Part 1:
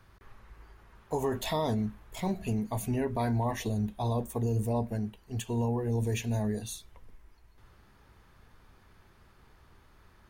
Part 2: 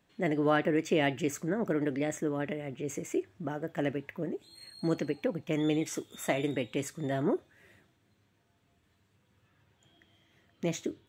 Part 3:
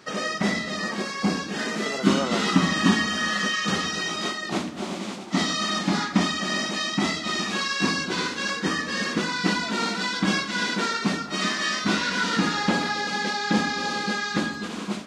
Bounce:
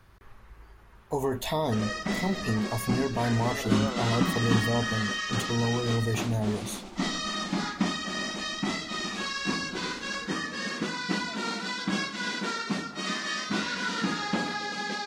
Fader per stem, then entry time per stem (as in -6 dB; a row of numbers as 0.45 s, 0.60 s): +2.0 dB, mute, -6.0 dB; 0.00 s, mute, 1.65 s